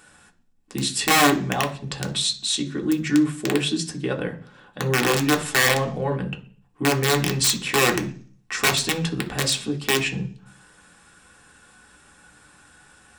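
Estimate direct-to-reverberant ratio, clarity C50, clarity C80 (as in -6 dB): 2.0 dB, 14.5 dB, 19.0 dB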